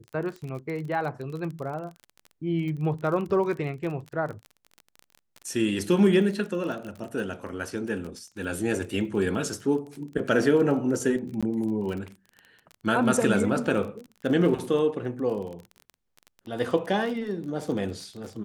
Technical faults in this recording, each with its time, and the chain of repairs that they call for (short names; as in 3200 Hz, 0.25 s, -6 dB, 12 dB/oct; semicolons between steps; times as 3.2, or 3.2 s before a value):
crackle 28/s -33 dBFS
11.41–11.43 gap 16 ms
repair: de-click; interpolate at 11.41, 16 ms